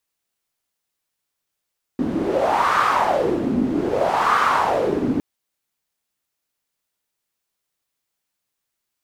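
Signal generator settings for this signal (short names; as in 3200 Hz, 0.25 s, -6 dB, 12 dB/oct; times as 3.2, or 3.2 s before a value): wind-like swept noise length 3.21 s, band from 250 Hz, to 1200 Hz, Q 4.5, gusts 2, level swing 4 dB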